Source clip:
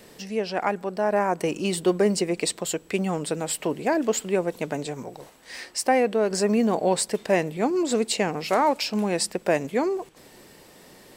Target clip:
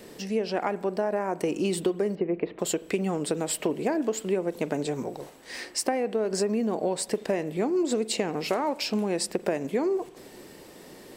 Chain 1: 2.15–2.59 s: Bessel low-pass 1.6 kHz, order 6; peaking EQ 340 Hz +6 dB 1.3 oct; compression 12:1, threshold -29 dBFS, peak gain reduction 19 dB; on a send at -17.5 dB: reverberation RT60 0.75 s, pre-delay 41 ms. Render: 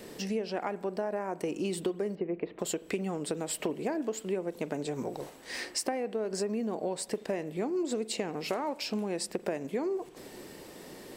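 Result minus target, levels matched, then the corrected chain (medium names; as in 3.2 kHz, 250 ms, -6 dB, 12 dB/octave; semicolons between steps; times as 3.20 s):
compression: peak gain reduction +6 dB
2.15–2.59 s: Bessel low-pass 1.6 kHz, order 6; peaking EQ 340 Hz +6 dB 1.3 oct; compression 12:1, threshold -22.5 dBFS, peak gain reduction 13 dB; on a send at -17.5 dB: reverberation RT60 0.75 s, pre-delay 41 ms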